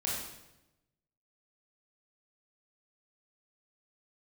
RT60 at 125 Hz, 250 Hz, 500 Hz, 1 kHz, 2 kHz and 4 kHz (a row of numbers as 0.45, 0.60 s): 1.3, 1.1, 1.0, 0.85, 0.85, 0.80 s